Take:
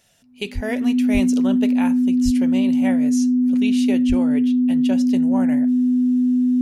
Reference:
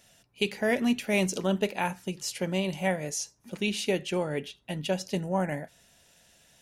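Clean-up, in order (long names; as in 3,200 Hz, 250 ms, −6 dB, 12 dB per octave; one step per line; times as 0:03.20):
notch filter 250 Hz, Q 30
high-pass at the plosives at 0:00.54/0:01.13/0:02.24/0:04.08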